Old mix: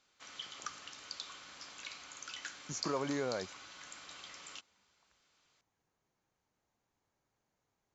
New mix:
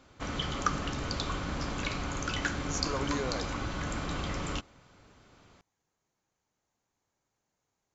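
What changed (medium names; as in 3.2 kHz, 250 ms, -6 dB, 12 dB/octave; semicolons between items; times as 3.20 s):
background: remove differentiator; master: remove distance through air 70 m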